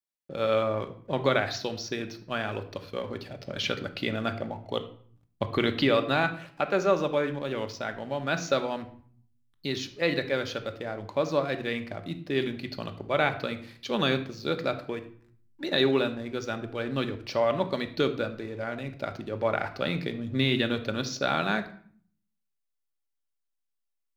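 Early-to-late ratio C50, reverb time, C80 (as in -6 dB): 12.5 dB, 0.55 s, 16.0 dB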